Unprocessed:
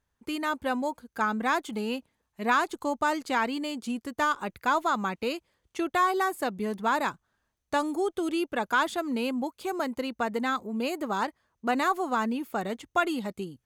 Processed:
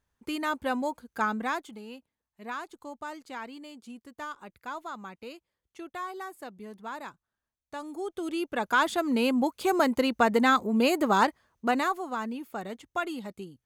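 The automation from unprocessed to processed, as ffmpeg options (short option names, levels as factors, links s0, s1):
-af "volume=8.41,afade=t=out:st=1.25:d=0.54:silence=0.251189,afade=t=in:st=7.76:d=0.7:silence=0.298538,afade=t=in:st=8.46:d=1.27:silence=0.375837,afade=t=out:st=11.22:d=0.78:silence=0.251189"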